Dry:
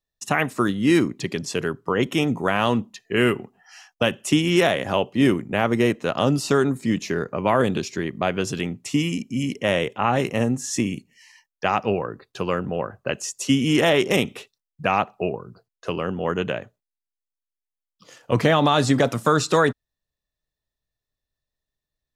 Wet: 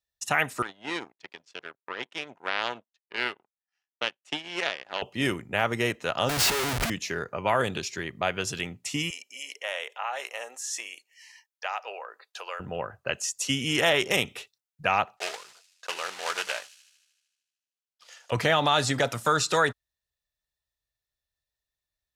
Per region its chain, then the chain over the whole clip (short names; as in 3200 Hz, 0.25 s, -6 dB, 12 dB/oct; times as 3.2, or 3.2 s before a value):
0.62–5.02 power-law curve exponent 2 + BPF 270–4500 Hz + de-esser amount 35%
6.29–6.9 high shelf 4000 Hz -6 dB + upward compressor, threshold -25 dBFS + Schmitt trigger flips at -36.5 dBFS
9.1–12.6 HPF 540 Hz 24 dB/oct + compressor 1.5:1, threshold -36 dBFS
15.17–18.32 block floating point 3-bit + BPF 650–7400 Hz + thin delay 76 ms, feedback 67%, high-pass 4900 Hz, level -10 dB
whole clip: HPF 43 Hz; bell 240 Hz -12.5 dB 2.3 oct; notch 1100 Hz, Q 12